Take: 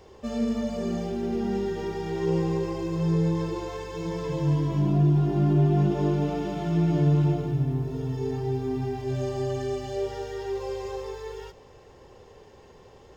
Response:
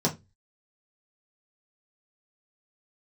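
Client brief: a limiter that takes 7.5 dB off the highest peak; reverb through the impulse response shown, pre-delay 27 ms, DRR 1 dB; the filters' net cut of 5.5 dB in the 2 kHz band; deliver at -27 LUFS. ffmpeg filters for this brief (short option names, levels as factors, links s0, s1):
-filter_complex "[0:a]equalizer=f=2000:t=o:g=-7,alimiter=limit=0.106:level=0:latency=1,asplit=2[s0][s1];[1:a]atrim=start_sample=2205,adelay=27[s2];[s1][s2]afir=irnorm=-1:irlink=0,volume=0.266[s3];[s0][s3]amix=inputs=2:normalize=0,volume=0.422"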